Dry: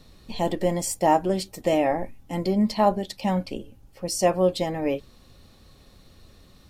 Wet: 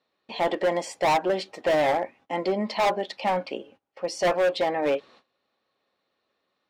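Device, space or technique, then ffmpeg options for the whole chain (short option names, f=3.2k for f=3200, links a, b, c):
walkie-talkie: -af "highpass=510,lowpass=2.8k,asoftclip=type=hard:threshold=-25.5dB,agate=range=-21dB:threshold=-58dB:ratio=16:detection=peak,volume=7dB"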